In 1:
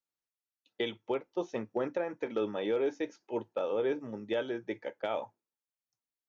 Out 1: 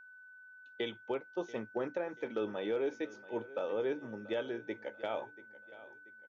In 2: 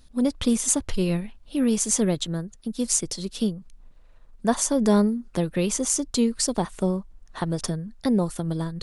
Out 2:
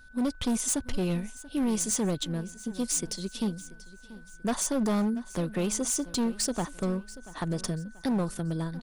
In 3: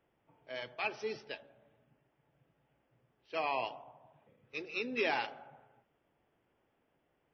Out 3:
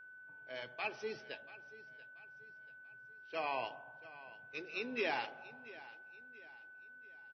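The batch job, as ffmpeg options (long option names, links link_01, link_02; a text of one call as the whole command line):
ffmpeg -i in.wav -filter_complex "[0:a]asoftclip=type=hard:threshold=-20dB,aeval=exprs='val(0)+0.00355*sin(2*PI*1500*n/s)':channel_layout=same,asplit=2[link_01][link_02];[link_02]aecho=0:1:685|1370|2055:0.126|0.0504|0.0201[link_03];[link_01][link_03]amix=inputs=2:normalize=0,volume=-3.5dB" out.wav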